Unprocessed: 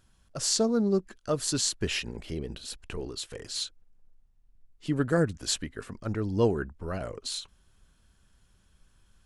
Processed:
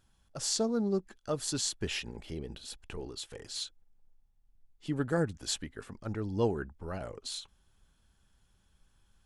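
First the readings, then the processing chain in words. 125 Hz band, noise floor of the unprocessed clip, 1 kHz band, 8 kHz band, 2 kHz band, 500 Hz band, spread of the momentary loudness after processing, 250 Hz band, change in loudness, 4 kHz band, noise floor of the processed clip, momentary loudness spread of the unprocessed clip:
−5.0 dB, −65 dBFS, −3.5 dB, −5.0 dB, −5.0 dB, −5.0 dB, 13 LU, −5.0 dB, −5.0 dB, −4.5 dB, −70 dBFS, 13 LU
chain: hollow resonant body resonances 830/3,400 Hz, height 8 dB
level −5 dB

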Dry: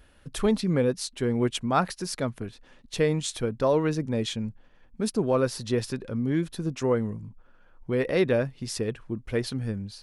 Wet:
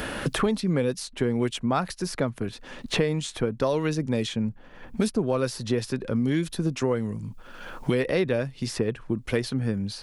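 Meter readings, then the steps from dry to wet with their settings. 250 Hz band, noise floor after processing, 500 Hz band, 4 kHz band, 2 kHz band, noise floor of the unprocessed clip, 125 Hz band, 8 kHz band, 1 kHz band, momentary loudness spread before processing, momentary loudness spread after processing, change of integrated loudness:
+1.5 dB, −47 dBFS, −0.5 dB, +1.5 dB, +2.5 dB, −56 dBFS, +1.5 dB, −0.5 dB, −1.0 dB, 10 LU, 9 LU, +0.5 dB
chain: multiband upward and downward compressor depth 100%

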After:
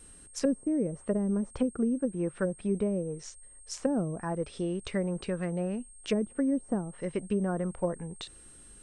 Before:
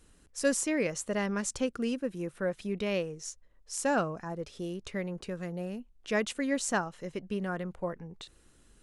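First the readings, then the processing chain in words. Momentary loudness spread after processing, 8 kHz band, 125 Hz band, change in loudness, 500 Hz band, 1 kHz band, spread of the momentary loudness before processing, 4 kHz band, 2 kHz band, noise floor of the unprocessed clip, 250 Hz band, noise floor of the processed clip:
12 LU, −6.5 dB, +5.0 dB, +1.5 dB, +1.0 dB, −5.0 dB, 12 LU, −3.5 dB, −9.5 dB, −62 dBFS, +4.5 dB, −53 dBFS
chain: treble cut that deepens with the level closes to 330 Hz, closed at −27 dBFS
steady tone 8,500 Hz −57 dBFS
level +5 dB

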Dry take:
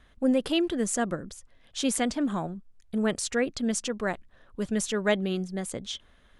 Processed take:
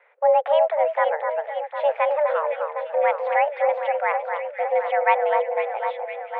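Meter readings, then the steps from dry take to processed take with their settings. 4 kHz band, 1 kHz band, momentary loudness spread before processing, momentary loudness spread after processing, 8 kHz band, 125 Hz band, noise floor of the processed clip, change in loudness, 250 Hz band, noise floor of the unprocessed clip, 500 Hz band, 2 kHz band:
can't be measured, +17.0 dB, 13 LU, 8 LU, below −40 dB, below −40 dB, −41 dBFS, +6.5 dB, below −40 dB, −60 dBFS, +10.5 dB, +7.0 dB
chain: delay that swaps between a low-pass and a high-pass 253 ms, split 1,700 Hz, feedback 81%, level −5.5 dB
single-sideband voice off tune +300 Hz 170–2,200 Hz
level +6 dB

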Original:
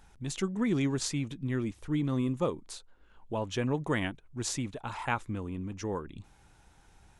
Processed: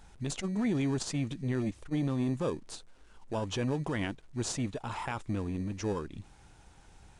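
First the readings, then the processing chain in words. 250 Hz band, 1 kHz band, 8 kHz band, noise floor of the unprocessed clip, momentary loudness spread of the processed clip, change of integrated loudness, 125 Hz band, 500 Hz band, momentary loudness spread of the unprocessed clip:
−0.5 dB, −2.5 dB, −2.0 dB, −61 dBFS, 8 LU, −1.0 dB, 0.0 dB, −1.0 dB, 9 LU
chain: in parallel at −11 dB: decimation without filtering 21×
on the sum: brickwall limiter −23.5 dBFS, peak gain reduction 10.5 dB
bit reduction 11 bits
downsampling to 22,050 Hz
saturating transformer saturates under 160 Hz
level +1.5 dB

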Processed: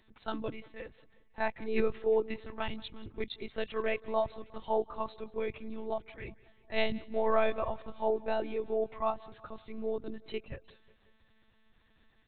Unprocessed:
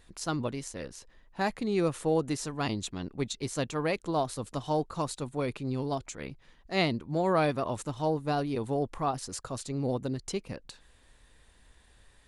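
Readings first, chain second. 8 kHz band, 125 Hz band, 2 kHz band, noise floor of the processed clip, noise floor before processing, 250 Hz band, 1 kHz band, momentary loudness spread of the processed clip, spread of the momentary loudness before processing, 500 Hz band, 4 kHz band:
below −40 dB, −15.5 dB, −2.0 dB, −67 dBFS, −61 dBFS, −8.5 dB, −3.5 dB, 16 LU, 11 LU, −0.5 dB, −6.0 dB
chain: one-pitch LPC vocoder at 8 kHz 220 Hz
noise reduction from a noise print of the clip's start 7 dB
repeating echo 180 ms, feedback 54%, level −22 dB

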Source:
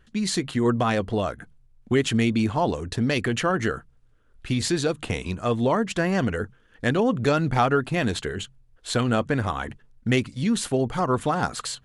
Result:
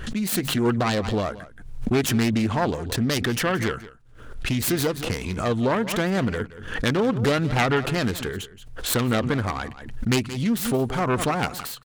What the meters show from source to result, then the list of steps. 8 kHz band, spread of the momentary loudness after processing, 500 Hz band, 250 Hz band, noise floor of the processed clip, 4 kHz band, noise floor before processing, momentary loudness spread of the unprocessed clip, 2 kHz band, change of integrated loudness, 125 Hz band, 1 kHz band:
+3.0 dB, 10 LU, −0.5 dB, +0.5 dB, −45 dBFS, +2.0 dB, −58 dBFS, 10 LU, +1.0 dB, +0.5 dB, +1.0 dB, −1.0 dB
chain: phase distortion by the signal itself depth 0.31 ms
single-tap delay 175 ms −17 dB
background raised ahead of every attack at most 67 dB per second

